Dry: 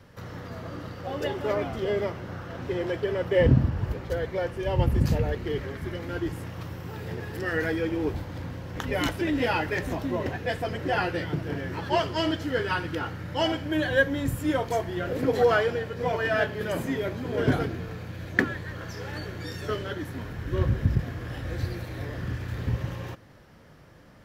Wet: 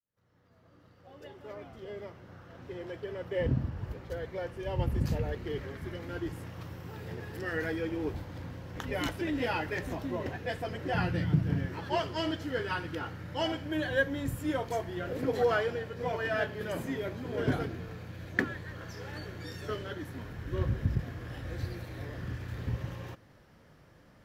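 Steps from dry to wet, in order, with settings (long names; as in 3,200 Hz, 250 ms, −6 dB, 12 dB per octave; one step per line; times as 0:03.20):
fade in at the beginning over 5.61 s
0:10.94–0:11.66: low shelf with overshoot 280 Hz +9 dB, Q 1.5
level −6 dB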